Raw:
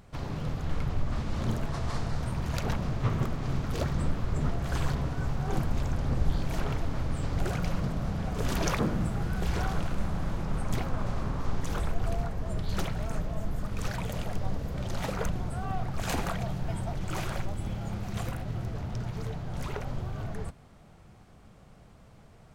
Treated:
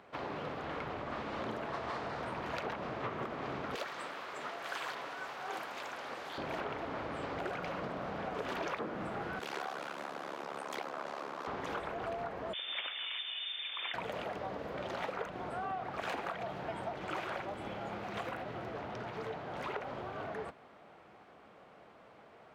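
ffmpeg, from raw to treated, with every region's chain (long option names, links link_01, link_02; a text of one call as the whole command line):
ffmpeg -i in.wav -filter_complex "[0:a]asettb=1/sr,asplit=3[link_01][link_02][link_03];[link_01]atrim=end=3.754[link_04];[link_02]atrim=start=3.75:end=6.38,asetpts=PTS-STARTPTS,afade=type=in:duration=0.004:curve=qsin,afade=type=out:start_time=2.626:duration=0.004:curve=qsin,highpass=frequency=1200:poles=1,aemphasis=mode=production:type=cd[link_05];[link_03]atrim=start=6.376[link_06];[link_04][link_05]acrossfade=duration=0.004:curve1=hsin:curve2=qsin[link_07];[link_07][link_06]acrossfade=duration=0.004:curve1=qsin:curve2=hsin,asettb=1/sr,asplit=3[link_08][link_09][link_10];[link_08]atrim=end=9.394[link_11];[link_09]atrim=start=9.39:end=11.47,asetpts=PTS-STARTPTS,afade=type=in:duration=0.004:curve=qsin,afade=type=out:start_time=2.076:duration=0.004:curve=qsin,tremolo=f=71:d=0.919,highpass=frequency=130:width=0.5412,highpass=frequency=130:width=1.3066,bass=frequency=250:gain=-9,treble=frequency=4000:gain=11[link_12];[link_10]atrim=start=11.466[link_13];[link_11][link_12]acrossfade=duration=0.004:curve1=hsin:curve2=qsin[link_14];[link_14][link_13]acrossfade=duration=0.004:curve1=qsin:curve2=hsin,asettb=1/sr,asplit=3[link_15][link_16][link_17];[link_15]atrim=end=12.534[link_18];[link_16]atrim=start=12.53:end=13.94,asetpts=PTS-STARTPTS,afade=type=in:duration=0.004:curve=qsin,afade=type=out:start_time=1.406:duration=0.004:curve=qsin,lowshelf=frequency=270:gain=-11.5,lowpass=frequency=3100:width_type=q:width=0.5098,lowpass=frequency=3100:width_type=q:width=0.6013,lowpass=frequency=3100:width_type=q:width=0.9,lowpass=frequency=3100:width_type=q:width=2.563,afreqshift=-3600[link_19];[link_17]atrim=start=13.936[link_20];[link_18][link_19]acrossfade=duration=0.004:curve1=hsin:curve2=qsin[link_21];[link_21][link_20]acrossfade=duration=0.004:curve1=qsin:curve2=hsin,highpass=69,acrossover=split=300 3500:gain=0.0794 1 0.112[link_22][link_23][link_24];[link_22][link_23][link_24]amix=inputs=3:normalize=0,acompressor=threshold=-39dB:ratio=6,volume=4dB" out.wav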